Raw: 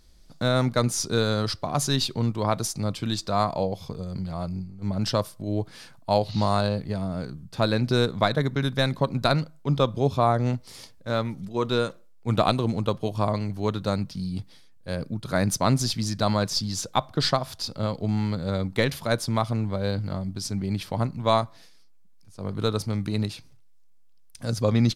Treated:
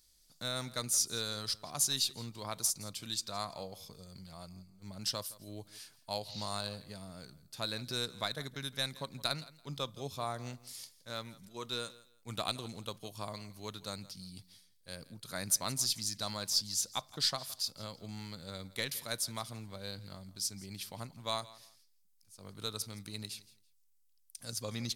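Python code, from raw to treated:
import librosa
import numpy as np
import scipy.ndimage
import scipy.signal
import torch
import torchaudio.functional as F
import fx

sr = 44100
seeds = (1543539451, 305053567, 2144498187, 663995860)

y = scipy.signal.lfilter([1.0, -0.9], [1.0], x)
y = fx.echo_feedback(y, sr, ms=167, feedback_pct=22, wet_db=-19.5)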